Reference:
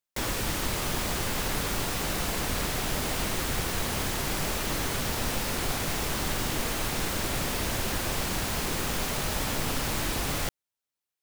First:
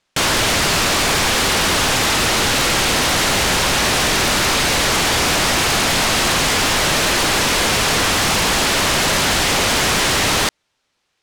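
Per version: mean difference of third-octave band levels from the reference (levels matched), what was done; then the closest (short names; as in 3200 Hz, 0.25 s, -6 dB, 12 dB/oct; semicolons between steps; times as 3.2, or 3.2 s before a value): 3.5 dB: LPF 5000 Hz 12 dB/oct; sine folder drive 17 dB, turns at -17 dBFS; gain +3.5 dB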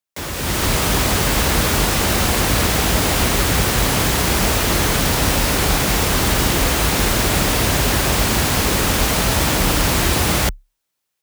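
1.5 dB: AGC gain up to 11 dB; frequency shift +34 Hz; gain +1.5 dB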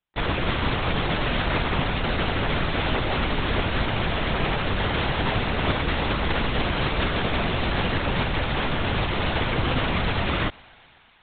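14.5 dB: on a send: thinning echo 0.123 s, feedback 82%, high-pass 300 Hz, level -24 dB; on the sum: LPC vocoder at 8 kHz whisper; gain +6.5 dB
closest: second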